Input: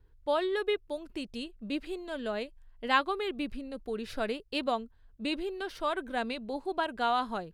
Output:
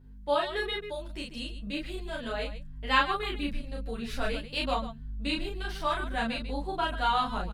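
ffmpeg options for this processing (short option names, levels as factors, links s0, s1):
-filter_complex "[0:a]lowshelf=f=410:g=-9,aeval=exprs='val(0)+0.00224*(sin(2*PI*50*n/s)+sin(2*PI*2*50*n/s)/2+sin(2*PI*3*50*n/s)/3+sin(2*PI*4*50*n/s)/4+sin(2*PI*5*50*n/s)/5)':c=same,asplit=2[s0][s1];[s1]aecho=0:1:34.99|142.9:0.794|0.282[s2];[s0][s2]amix=inputs=2:normalize=0,asubboost=boost=5:cutoff=170,asplit=2[s3][s4];[s4]adelay=9.7,afreqshift=2.2[s5];[s3][s5]amix=inputs=2:normalize=1,volume=1.78"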